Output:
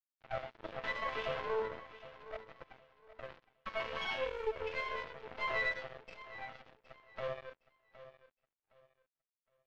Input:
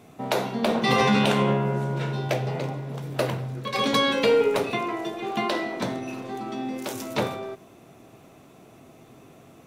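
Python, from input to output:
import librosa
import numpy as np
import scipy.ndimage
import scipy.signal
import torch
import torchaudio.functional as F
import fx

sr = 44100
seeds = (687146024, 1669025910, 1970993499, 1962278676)

p1 = fx.sine_speech(x, sr)
p2 = scipy.signal.sosfilt(scipy.signal.butter(2, 440.0, 'highpass', fs=sr, output='sos'), p1)
p3 = fx.over_compress(p2, sr, threshold_db=-28.0, ratio=-0.5)
p4 = p2 + F.gain(torch.from_numpy(p3), 2.5).numpy()
p5 = fx.quant_companded(p4, sr, bits=6)
p6 = fx.resonator_bank(p5, sr, root=57, chord='minor', decay_s=0.55)
p7 = fx.tube_stage(p6, sr, drive_db=36.0, bias=0.8)
p8 = np.sign(p7) * np.maximum(np.abs(p7) - 10.0 ** (-51.0 / 20.0), 0.0)
p9 = fx.air_absorb(p8, sr, metres=230.0)
p10 = fx.echo_feedback(p9, sr, ms=764, feedback_pct=25, wet_db=-15.5)
y = F.gain(torch.from_numpy(p10), 11.5).numpy()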